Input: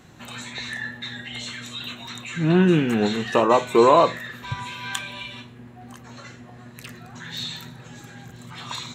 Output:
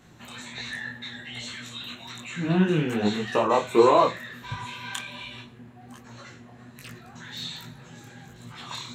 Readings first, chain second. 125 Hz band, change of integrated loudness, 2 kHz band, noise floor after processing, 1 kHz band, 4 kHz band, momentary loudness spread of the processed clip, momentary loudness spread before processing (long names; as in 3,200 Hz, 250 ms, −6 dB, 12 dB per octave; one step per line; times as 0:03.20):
−4.0 dB, −3.5 dB, −4.0 dB, −49 dBFS, −3.5 dB, −3.5 dB, 24 LU, 24 LU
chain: micro pitch shift up and down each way 45 cents